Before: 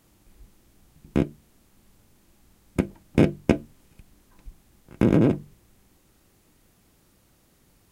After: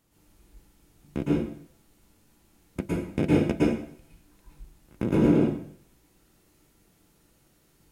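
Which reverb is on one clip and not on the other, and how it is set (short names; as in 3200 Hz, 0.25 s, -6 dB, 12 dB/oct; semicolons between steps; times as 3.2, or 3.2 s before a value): plate-style reverb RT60 0.59 s, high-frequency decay 0.95×, pre-delay 0.1 s, DRR -6.5 dB; gain -9 dB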